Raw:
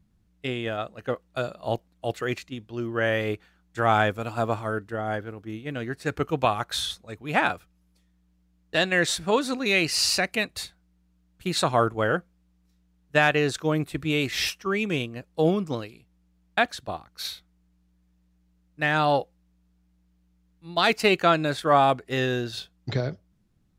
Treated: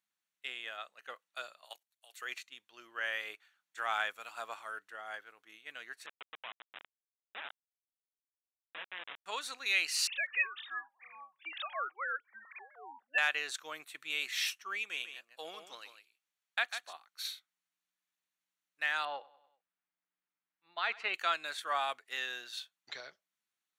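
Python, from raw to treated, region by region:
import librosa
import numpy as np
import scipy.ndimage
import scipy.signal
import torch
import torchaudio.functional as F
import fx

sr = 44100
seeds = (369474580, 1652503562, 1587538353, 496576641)

y = fx.chain(x, sr, fx.highpass(hz=1000.0, slope=6),
    fx.high_shelf(hz=5600.0, db=11.0),
    fx.level_steps(step_db=15), at=(1.65, 2.22))
y = fx.chain(y, sr, fx.steep_highpass(hz=180.0, slope=48),
    fx.schmitt(flips_db=-19.5),
    fx.resample_bad(factor=6, down='none', up='filtered'), at=(6.06, 9.26))
y = fx.chain(y, sr, fx.sine_speech(),
    fx.echo_pitch(ms=194, semitones=-7, count=3, db_per_echo=-6.0),
    fx.tilt_shelf(db=-7.0, hz=1400.0), at=(10.07, 13.18))
y = fx.chain(y, sr, fx.low_shelf(hz=230.0, db=-8.0),
    fx.echo_single(ms=148, db=-9.5), at=(14.82, 16.93))
y = fx.chain(y, sr, fx.lowpass(hz=2200.0, slope=12),
    fx.echo_feedback(ms=97, feedback_pct=55, wet_db=-20.5), at=(19.05, 21.14))
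y = scipy.signal.sosfilt(scipy.signal.butter(2, 1400.0, 'highpass', fs=sr, output='sos'), y)
y = fx.notch(y, sr, hz=5000.0, q=8.4)
y = y * 10.0 ** (-6.0 / 20.0)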